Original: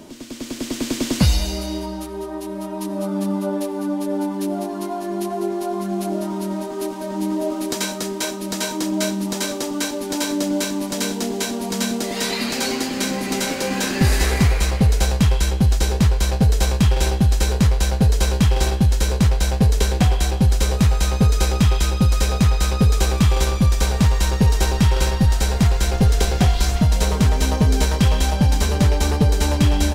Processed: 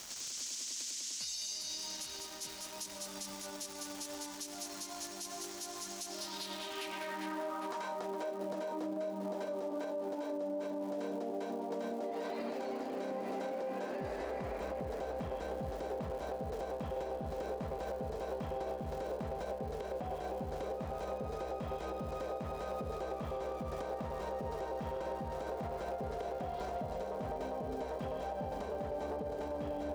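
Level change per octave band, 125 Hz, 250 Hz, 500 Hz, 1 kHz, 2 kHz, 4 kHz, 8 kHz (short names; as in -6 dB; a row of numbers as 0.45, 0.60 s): -30.0, -22.0, -11.5, -12.5, -20.5, -19.0, -17.0 dB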